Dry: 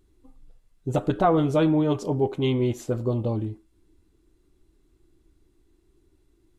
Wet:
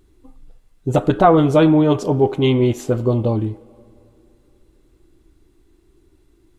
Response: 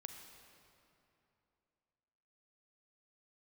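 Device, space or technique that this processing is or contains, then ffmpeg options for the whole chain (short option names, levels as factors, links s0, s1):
filtered reverb send: -filter_complex "[0:a]asplit=2[s0][s1];[s1]highpass=f=410:p=1,lowpass=4200[s2];[1:a]atrim=start_sample=2205[s3];[s2][s3]afir=irnorm=-1:irlink=0,volume=0.398[s4];[s0][s4]amix=inputs=2:normalize=0,volume=2.24"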